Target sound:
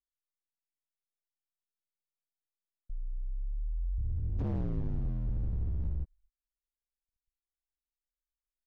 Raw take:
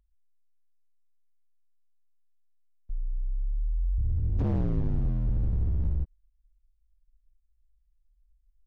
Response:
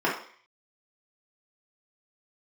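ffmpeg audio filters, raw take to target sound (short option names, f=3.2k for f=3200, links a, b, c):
-af "agate=range=-28dB:threshold=-55dB:ratio=16:detection=peak,volume=-6dB"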